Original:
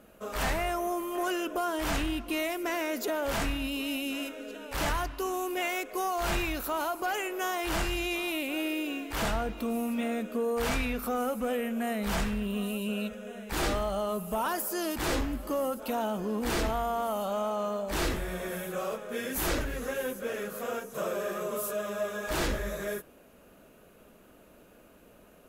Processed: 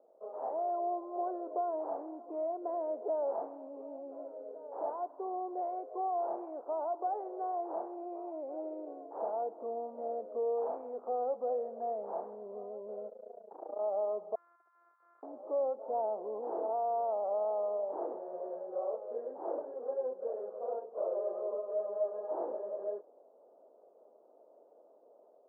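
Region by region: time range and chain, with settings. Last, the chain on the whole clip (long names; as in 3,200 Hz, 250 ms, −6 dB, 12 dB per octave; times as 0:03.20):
0:13.09–0:13.79: high shelf with overshoot 4,100 Hz +13.5 dB, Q 1.5 + downward compressor 3 to 1, threshold −27 dBFS + amplitude modulation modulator 28 Hz, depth 80%
0:14.35–0:15.23: samples sorted by size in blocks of 128 samples + Chebyshev high-pass filter 1,200 Hz, order 6 + hard clipping −25 dBFS
whole clip: Butterworth low-pass 830 Hz 36 dB per octave; automatic gain control gain up to 3 dB; high-pass filter 460 Hz 24 dB per octave; level −2.5 dB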